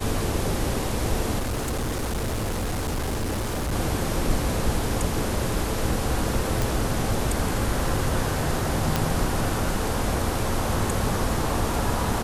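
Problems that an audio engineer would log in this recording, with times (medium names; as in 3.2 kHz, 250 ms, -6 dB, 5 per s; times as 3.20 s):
1.38–3.74 s: clipped -23.5 dBFS
6.62 s: pop
8.96 s: pop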